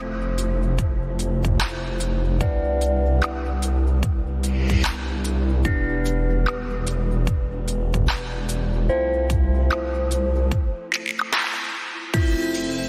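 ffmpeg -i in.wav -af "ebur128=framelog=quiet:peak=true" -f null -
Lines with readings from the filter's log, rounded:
Integrated loudness:
  I:         -22.9 LUFS
  Threshold: -32.9 LUFS
Loudness range:
  LRA:         1.3 LU
  Threshold: -42.7 LUFS
  LRA low:   -23.5 LUFS
  LRA high:  -22.2 LUFS
True peak:
  Peak:       -6.9 dBFS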